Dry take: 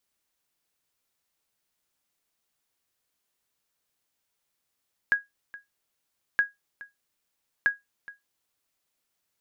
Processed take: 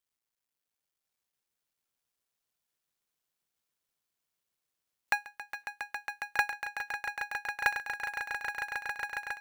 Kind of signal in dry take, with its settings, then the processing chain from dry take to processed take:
sonar ping 1.65 kHz, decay 0.17 s, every 1.27 s, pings 3, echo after 0.42 s, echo -20 dB -13.5 dBFS
cycle switcher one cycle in 2, muted; spectral noise reduction 7 dB; on a send: echo with a slow build-up 137 ms, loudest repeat 8, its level -10 dB

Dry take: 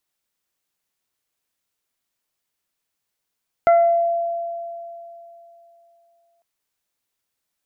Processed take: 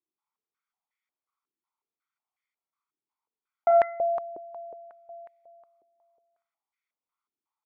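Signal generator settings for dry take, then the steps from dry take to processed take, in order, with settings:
additive tone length 2.75 s, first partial 681 Hz, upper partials -10/-18 dB, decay 3.09 s, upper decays 0.44/0.61 s, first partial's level -9.5 dB
comb 0.9 ms, depth 80%; Schroeder reverb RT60 0.32 s, combs from 28 ms, DRR 5 dB; step-sequenced band-pass 5.5 Hz 360–1900 Hz

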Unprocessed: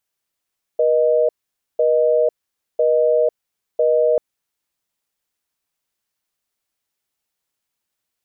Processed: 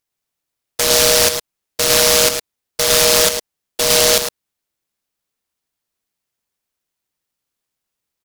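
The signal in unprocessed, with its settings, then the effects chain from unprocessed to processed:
call progress tone busy tone, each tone -15.5 dBFS 3.39 s
on a send: delay 108 ms -5.5 dB; on the sum: delay time shaken by noise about 4.8 kHz, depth 0.35 ms

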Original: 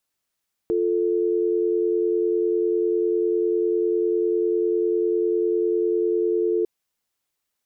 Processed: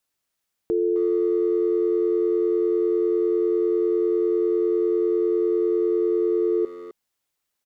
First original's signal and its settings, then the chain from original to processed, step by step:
call progress tone dial tone, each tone -21.5 dBFS 5.95 s
speakerphone echo 260 ms, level -11 dB

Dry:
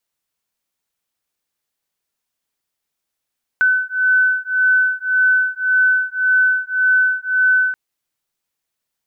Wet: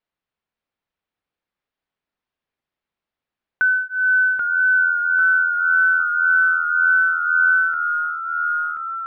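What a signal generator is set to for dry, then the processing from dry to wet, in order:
beating tones 1.51 kHz, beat 1.8 Hz, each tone -16 dBFS 4.13 s
ever faster or slower copies 569 ms, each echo -1 st, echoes 3, each echo -6 dB; distance through air 320 m

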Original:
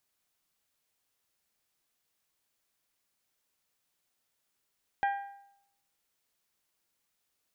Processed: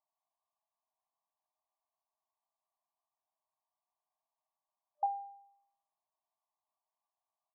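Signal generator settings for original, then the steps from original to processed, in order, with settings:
metal hit bell, lowest mode 799 Hz, decay 0.76 s, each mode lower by 7 dB, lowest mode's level -24 dB
FFT band-pass 600–1200 Hz; doubling 32 ms -11 dB

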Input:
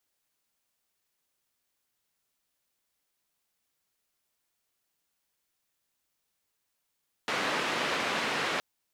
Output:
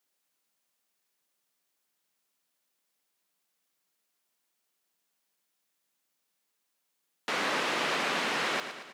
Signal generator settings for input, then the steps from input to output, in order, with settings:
noise band 200–2400 Hz, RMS -30.5 dBFS 1.32 s
high-pass 150 Hz 24 dB/octave; on a send: feedback delay 113 ms, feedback 58%, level -10.5 dB

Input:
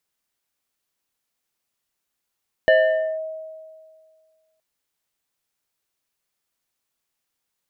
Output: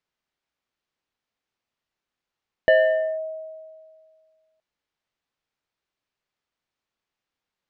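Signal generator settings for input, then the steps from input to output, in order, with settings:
FM tone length 1.92 s, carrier 635 Hz, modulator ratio 1.83, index 0.96, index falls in 0.51 s linear, decay 1.96 s, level -10 dB
distance through air 150 m

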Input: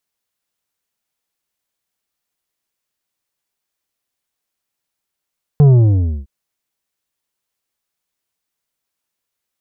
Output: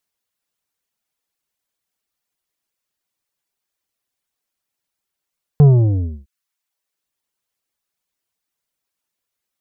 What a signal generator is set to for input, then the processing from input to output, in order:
sub drop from 150 Hz, over 0.66 s, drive 8 dB, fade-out 0.59 s, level -6 dB
reverb removal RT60 0.61 s

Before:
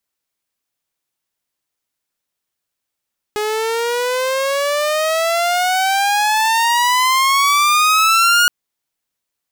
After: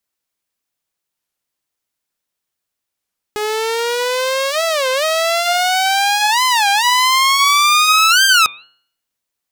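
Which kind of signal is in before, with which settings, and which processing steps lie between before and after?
gliding synth tone saw, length 5.12 s, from 418 Hz, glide +21.5 st, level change +8 dB, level -7 dB
de-hum 137.9 Hz, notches 31; dynamic bell 3.9 kHz, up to +5 dB, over -28 dBFS, Q 1; warped record 33 1/3 rpm, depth 250 cents

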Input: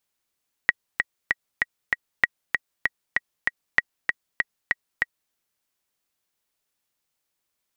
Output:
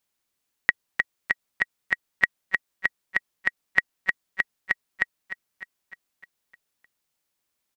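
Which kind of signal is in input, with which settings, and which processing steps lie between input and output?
metronome 194 bpm, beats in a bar 5, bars 3, 1.91 kHz, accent 4.5 dB -3 dBFS
peaking EQ 240 Hz +2 dB 0.74 oct; on a send: feedback delay 304 ms, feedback 57%, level -13 dB

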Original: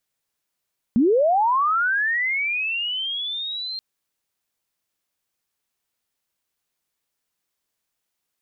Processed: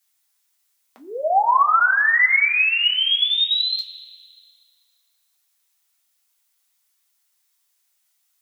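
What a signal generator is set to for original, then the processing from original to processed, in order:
sweep linear 210 Hz -> 4.2 kHz -13.5 dBFS -> -27.5 dBFS 2.83 s
high-pass 700 Hz 24 dB/octave; treble shelf 3.2 kHz +9.5 dB; two-slope reverb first 0.21 s, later 2 s, from -20 dB, DRR 0.5 dB

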